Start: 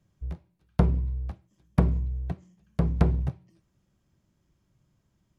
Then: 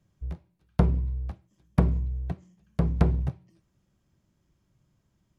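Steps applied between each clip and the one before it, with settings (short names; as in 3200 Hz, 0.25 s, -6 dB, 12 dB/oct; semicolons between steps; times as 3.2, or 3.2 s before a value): nothing audible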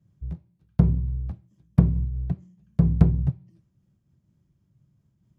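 bell 130 Hz +15 dB 2.3 oct; noise-modulated level, depth 50%; gain -4.5 dB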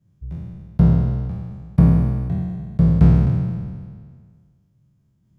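spectral trails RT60 1.81 s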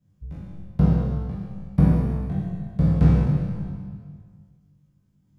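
flutter echo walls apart 3.5 m, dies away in 0.31 s; on a send at -9 dB: reverb RT60 1.0 s, pre-delay 4 ms; on the sum: gain -3.5 dB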